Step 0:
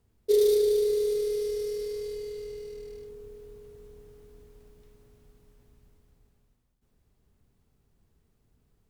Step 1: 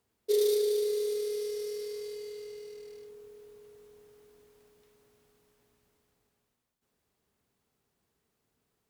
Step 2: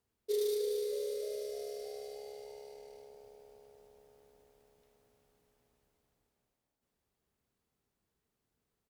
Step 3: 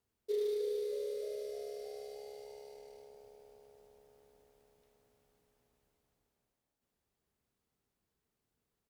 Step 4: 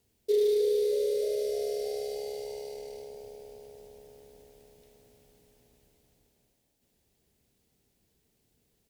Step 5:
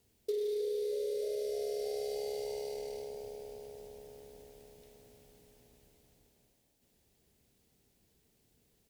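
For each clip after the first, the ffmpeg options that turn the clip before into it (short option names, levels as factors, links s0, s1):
-af "highpass=f=580:p=1"
-filter_complex "[0:a]lowshelf=f=74:g=8.5,asplit=8[s0][s1][s2][s3][s4][s5][s6][s7];[s1]adelay=309,afreqshift=69,volume=0.237[s8];[s2]adelay=618,afreqshift=138,volume=0.145[s9];[s3]adelay=927,afreqshift=207,volume=0.0881[s10];[s4]adelay=1236,afreqshift=276,volume=0.0537[s11];[s5]adelay=1545,afreqshift=345,volume=0.0327[s12];[s6]adelay=1854,afreqshift=414,volume=0.02[s13];[s7]adelay=2163,afreqshift=483,volume=0.0122[s14];[s0][s8][s9][s10][s11][s12][s13][s14]amix=inputs=8:normalize=0,volume=0.447"
-filter_complex "[0:a]acrossover=split=3400[s0][s1];[s1]acompressor=threshold=0.00141:ratio=4:attack=1:release=60[s2];[s0][s2]amix=inputs=2:normalize=0,volume=0.841"
-filter_complex "[0:a]equalizer=f=1200:t=o:w=1.1:g=-12,asplit=2[s0][s1];[s1]alimiter=level_in=4.47:limit=0.0631:level=0:latency=1,volume=0.224,volume=1[s2];[s0][s2]amix=inputs=2:normalize=0,volume=2.37"
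-af "acompressor=threshold=0.02:ratio=6,volume=1.12"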